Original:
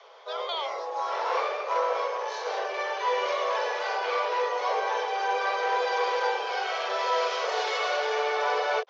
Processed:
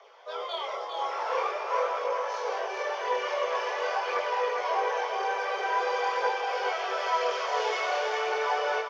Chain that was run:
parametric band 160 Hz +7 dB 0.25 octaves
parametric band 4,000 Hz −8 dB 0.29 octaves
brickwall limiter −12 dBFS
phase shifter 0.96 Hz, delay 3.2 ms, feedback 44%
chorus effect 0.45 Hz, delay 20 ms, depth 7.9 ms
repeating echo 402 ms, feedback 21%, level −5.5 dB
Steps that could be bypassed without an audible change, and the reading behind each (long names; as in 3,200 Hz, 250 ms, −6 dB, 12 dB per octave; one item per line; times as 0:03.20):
parametric band 160 Hz: nothing at its input below 360 Hz
brickwall limiter −12 dBFS: peak of its input −14.5 dBFS